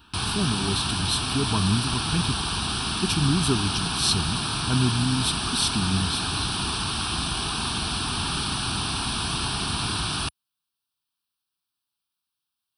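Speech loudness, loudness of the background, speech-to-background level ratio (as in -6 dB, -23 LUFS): -26.5 LUFS, -26.0 LUFS, -0.5 dB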